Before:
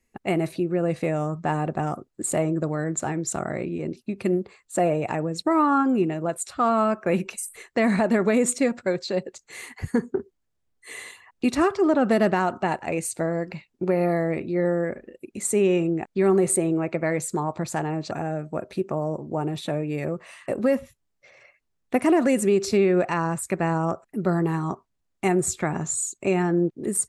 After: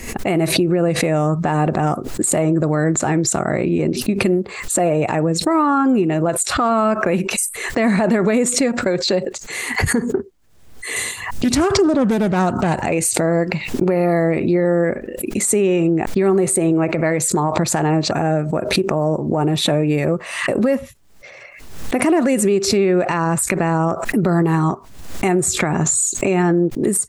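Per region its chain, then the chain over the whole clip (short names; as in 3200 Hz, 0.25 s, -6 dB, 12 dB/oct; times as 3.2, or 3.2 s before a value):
10.96–12.86 tone controls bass +11 dB, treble +8 dB + Doppler distortion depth 0.24 ms
whole clip: compressor, threshold -25 dBFS; maximiser +20.5 dB; backwards sustainer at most 65 dB/s; gain -7.5 dB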